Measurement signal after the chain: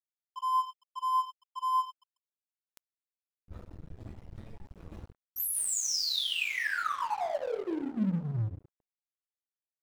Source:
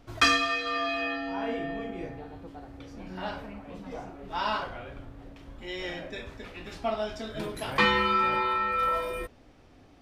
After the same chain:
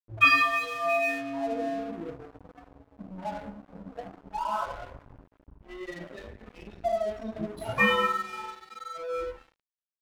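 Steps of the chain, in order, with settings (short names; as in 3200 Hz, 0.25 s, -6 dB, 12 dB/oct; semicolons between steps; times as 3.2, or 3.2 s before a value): spectral contrast raised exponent 2.9; two-slope reverb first 0.5 s, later 1.8 s, from -18 dB, DRR -6.5 dB; crossover distortion -38 dBFS; gain -4.5 dB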